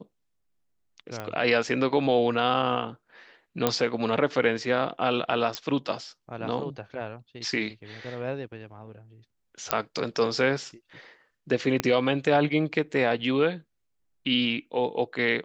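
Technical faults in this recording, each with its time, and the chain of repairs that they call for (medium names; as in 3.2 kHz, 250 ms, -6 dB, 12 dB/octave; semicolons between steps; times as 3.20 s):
1.20 s: pop -20 dBFS
3.67 s: pop -7 dBFS
5.55 s: pop -13 dBFS
9.71 s: pop -5 dBFS
11.80 s: pop -9 dBFS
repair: de-click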